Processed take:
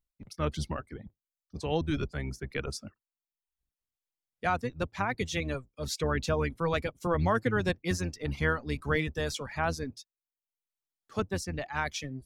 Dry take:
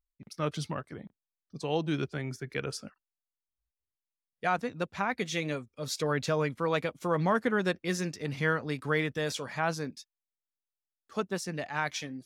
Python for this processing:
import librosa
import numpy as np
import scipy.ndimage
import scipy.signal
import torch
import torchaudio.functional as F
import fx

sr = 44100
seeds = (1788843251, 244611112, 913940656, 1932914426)

y = fx.octave_divider(x, sr, octaves=1, level_db=0.0)
y = fx.dereverb_blind(y, sr, rt60_s=0.68)